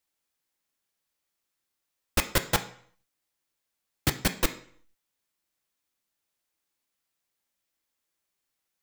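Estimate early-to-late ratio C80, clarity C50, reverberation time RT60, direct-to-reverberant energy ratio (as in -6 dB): 17.5 dB, 13.5 dB, 0.60 s, 7.0 dB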